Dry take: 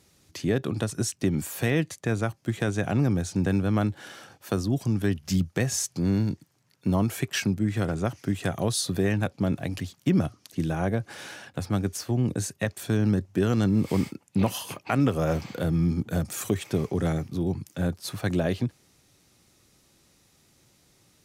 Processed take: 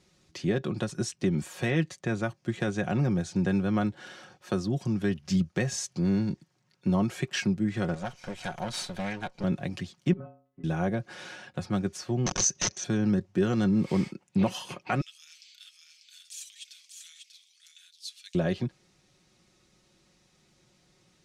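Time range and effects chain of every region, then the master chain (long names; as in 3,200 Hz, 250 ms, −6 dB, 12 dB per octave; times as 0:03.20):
0:07.94–0:09.44: lower of the sound and its delayed copy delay 1.3 ms + upward compression, threshold −30 dBFS + low-shelf EQ 420 Hz −9 dB
0:10.13–0:10.64: low-pass filter 1,700 Hz 24 dB per octave + noise gate −56 dBFS, range −12 dB + stiff-string resonator 130 Hz, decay 0.51 s, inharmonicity 0.008
0:12.26–0:12.84: wrap-around overflow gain 22.5 dB + upward compression, threshold −36 dBFS + low-pass with resonance 6,100 Hz, resonance Q 14
0:15.01–0:18.35: inverse Chebyshev high-pass filter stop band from 530 Hz, stop band 80 dB + single-tap delay 592 ms −5.5 dB
whole clip: low-pass filter 6,400 Hz 12 dB per octave; comb filter 5.5 ms, depth 51%; level −3 dB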